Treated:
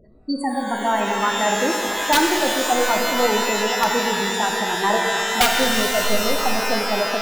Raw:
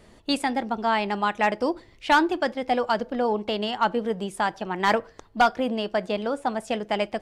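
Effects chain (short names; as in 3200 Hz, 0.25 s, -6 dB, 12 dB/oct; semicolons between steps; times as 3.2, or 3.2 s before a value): spectral gate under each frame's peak -10 dB strong; wrapped overs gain 12 dB; shimmer reverb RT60 2.9 s, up +12 st, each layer -2 dB, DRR 1.5 dB; gain +2 dB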